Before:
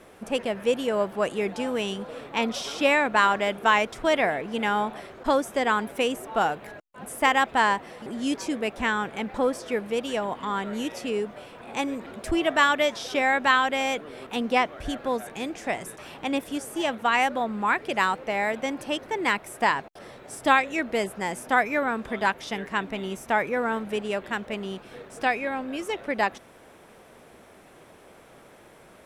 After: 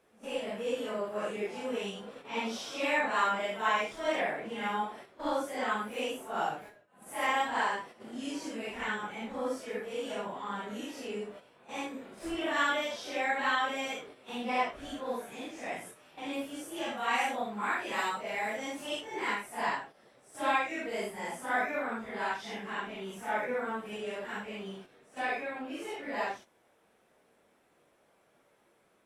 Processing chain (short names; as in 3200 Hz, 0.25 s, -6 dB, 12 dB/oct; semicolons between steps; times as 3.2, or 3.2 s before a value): phase scrambler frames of 0.2 s; 16.97–19.01 high shelf 3900 Hz +6.5 dB; gate -39 dBFS, range -8 dB; low shelf 110 Hz -9.5 dB; gain -8 dB